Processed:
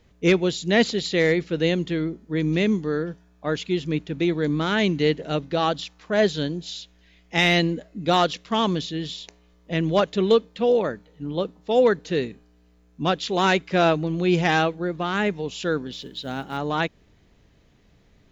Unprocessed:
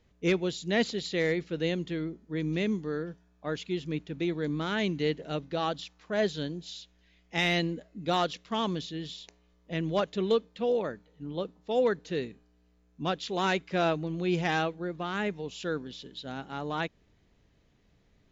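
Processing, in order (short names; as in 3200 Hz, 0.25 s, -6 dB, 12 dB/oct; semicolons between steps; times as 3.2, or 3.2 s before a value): 15.92–16.58 block floating point 7-bit; gain +8 dB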